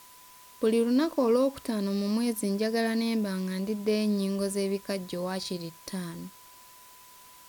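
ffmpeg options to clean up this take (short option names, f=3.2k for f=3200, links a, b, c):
-af "bandreject=f=1k:w=30,afwtdn=0.0022"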